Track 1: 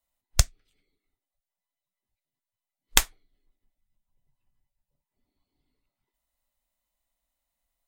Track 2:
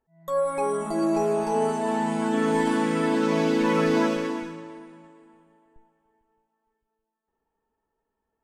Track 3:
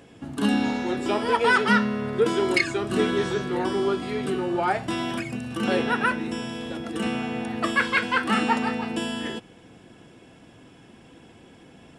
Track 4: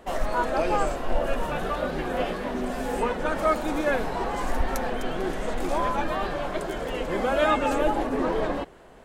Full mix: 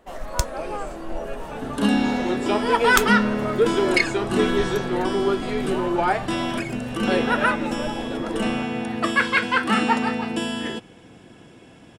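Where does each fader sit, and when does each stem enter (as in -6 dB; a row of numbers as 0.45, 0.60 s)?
-3.5, -14.0, +2.5, -6.5 dB; 0.00, 0.00, 1.40, 0.00 s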